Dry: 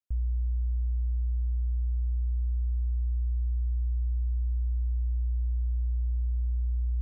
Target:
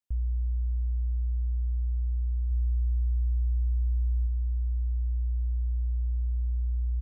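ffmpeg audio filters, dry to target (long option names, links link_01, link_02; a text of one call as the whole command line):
ffmpeg -i in.wav -filter_complex "[0:a]asplit=3[link_01][link_02][link_03];[link_01]afade=type=out:start_time=2.5:duration=0.02[link_04];[link_02]asplit=2[link_05][link_06];[link_06]adelay=47,volume=-7dB[link_07];[link_05][link_07]amix=inputs=2:normalize=0,afade=type=in:start_time=2.5:duration=0.02,afade=type=out:start_time=4.26:duration=0.02[link_08];[link_03]afade=type=in:start_time=4.26:duration=0.02[link_09];[link_04][link_08][link_09]amix=inputs=3:normalize=0" out.wav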